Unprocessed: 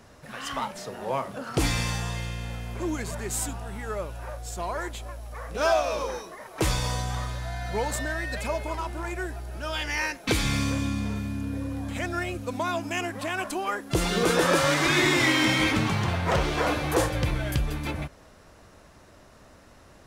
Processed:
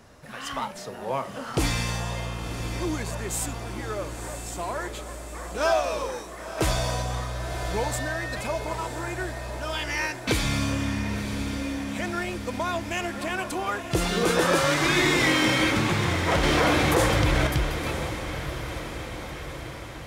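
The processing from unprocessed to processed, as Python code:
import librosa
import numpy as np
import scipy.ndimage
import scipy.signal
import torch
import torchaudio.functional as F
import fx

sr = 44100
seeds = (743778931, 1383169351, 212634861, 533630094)

p1 = x + fx.echo_diffused(x, sr, ms=1015, feedback_pct=61, wet_db=-8.5, dry=0)
y = fx.env_flatten(p1, sr, amount_pct=70, at=(16.43, 17.47))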